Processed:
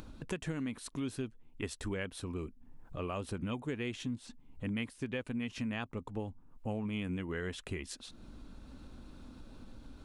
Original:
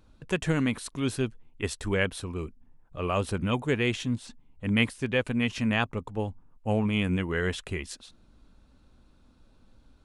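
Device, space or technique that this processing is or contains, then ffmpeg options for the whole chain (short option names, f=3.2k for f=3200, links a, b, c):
upward and downward compression: -af "equalizer=f=270:t=o:w=0.83:g=4.5,acompressor=mode=upward:threshold=-33dB:ratio=2.5,acompressor=threshold=-30dB:ratio=5,volume=-4.5dB"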